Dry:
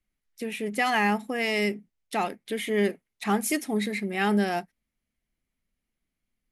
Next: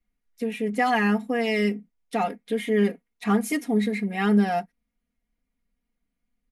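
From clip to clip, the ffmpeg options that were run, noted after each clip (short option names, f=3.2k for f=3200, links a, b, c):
-af "highshelf=f=2.3k:g=-8.5,aecho=1:1:4.2:0.98"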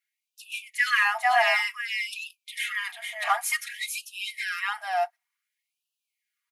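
-af "aecho=1:1:445:0.596,acontrast=35,afftfilt=real='re*gte(b*sr/1024,560*pow(2500/560,0.5+0.5*sin(2*PI*0.55*pts/sr)))':imag='im*gte(b*sr/1024,560*pow(2500/560,0.5+0.5*sin(2*PI*0.55*pts/sr)))':win_size=1024:overlap=0.75"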